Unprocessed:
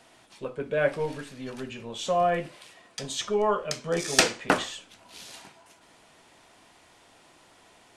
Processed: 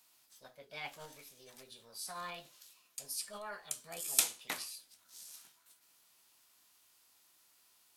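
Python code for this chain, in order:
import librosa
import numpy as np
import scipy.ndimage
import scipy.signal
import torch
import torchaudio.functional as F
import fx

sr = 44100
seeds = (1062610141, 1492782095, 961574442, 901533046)

y = librosa.effects.preemphasis(x, coef=0.9, zi=[0.0])
y = fx.formant_shift(y, sr, semitones=6)
y = y * 10.0 ** (-3.5 / 20.0)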